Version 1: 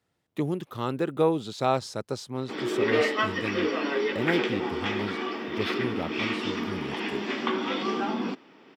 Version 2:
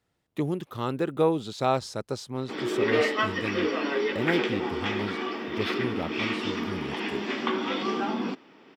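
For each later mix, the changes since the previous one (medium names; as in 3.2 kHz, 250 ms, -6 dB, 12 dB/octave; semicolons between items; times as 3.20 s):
master: remove high-pass 72 Hz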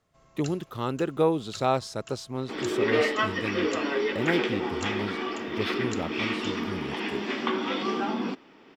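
first sound: unmuted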